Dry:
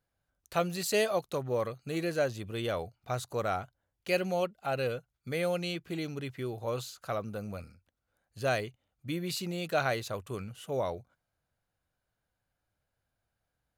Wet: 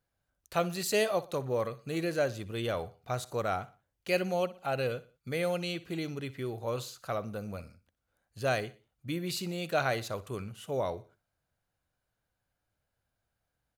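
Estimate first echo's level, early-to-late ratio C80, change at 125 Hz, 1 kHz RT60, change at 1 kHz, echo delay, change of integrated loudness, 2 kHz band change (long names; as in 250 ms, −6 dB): −18.0 dB, no reverb audible, 0.0 dB, no reverb audible, 0.0 dB, 61 ms, 0.0 dB, 0.0 dB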